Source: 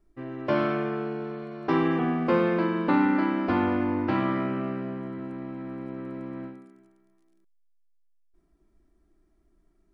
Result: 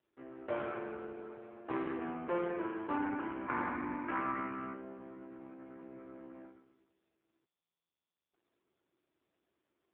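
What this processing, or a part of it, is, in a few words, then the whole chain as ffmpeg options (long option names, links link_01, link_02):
telephone: -filter_complex "[0:a]asettb=1/sr,asplit=3[link_01][link_02][link_03];[link_01]atrim=end=3.454[link_04];[link_02]atrim=start=3.45:end=4.74,asetpts=PTS-STARTPTS,afade=type=in:duration=0.004:curve=qsin,afade=type=out:start_time=1.286:duration=0.004:curve=qsin,equalizer=frequency=125:width_type=o:width=1:gain=-3,equalizer=frequency=250:width_type=o:width=1:gain=6,equalizer=frequency=500:width_type=o:width=1:gain=-10,equalizer=frequency=1000:width_type=o:width=1:gain=7,equalizer=frequency=2000:width_type=o:width=1:gain=8,equalizer=frequency=4000:width_type=o:width=1:gain=-8[link_05];[link_03]atrim=start=4.736[link_06];[link_04][link_05]acrossfade=duration=0.004:curve1=hsin:curve2=qsin[link_07];[link_07][link_06]acrossfade=duration=0.004:curve1=qsin:curve2=hsin,highpass=340,lowpass=3200,volume=-8.5dB" -ar 8000 -c:a libopencore_amrnb -b:a 5150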